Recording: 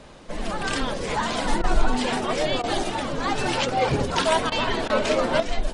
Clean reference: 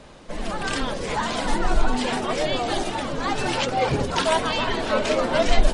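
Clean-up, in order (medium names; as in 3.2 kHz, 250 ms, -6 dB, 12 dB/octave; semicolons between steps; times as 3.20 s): interpolate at 1.62/2.62/4.50/4.88 s, 16 ms; gain correction +8 dB, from 5.40 s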